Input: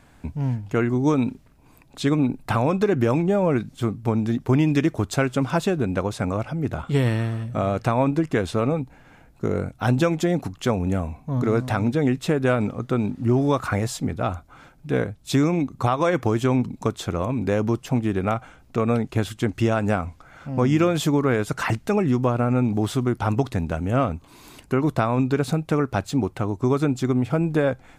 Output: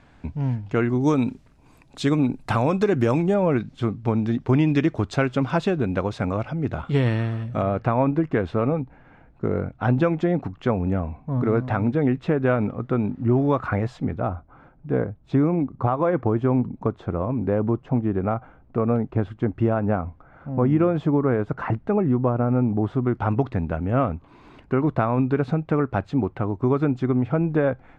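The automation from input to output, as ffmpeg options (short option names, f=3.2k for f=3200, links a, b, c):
-af "asetnsamples=n=441:p=0,asendcmd='1.01 lowpass f 8200;3.34 lowpass f 4100;7.62 lowpass f 2000;14.21 lowpass f 1200;23.04 lowpass f 2000',lowpass=4.5k"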